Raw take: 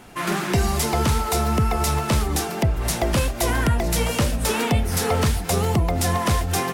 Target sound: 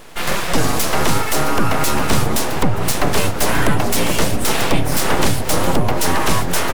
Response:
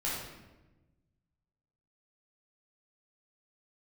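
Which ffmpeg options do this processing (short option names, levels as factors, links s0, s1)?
-filter_complex "[0:a]asplit=2[s0][s1];[s1]adelay=1458,volume=0.398,highshelf=f=4000:g=-32.8[s2];[s0][s2]amix=inputs=2:normalize=0,aeval=exprs='abs(val(0))':c=same,volume=2.24"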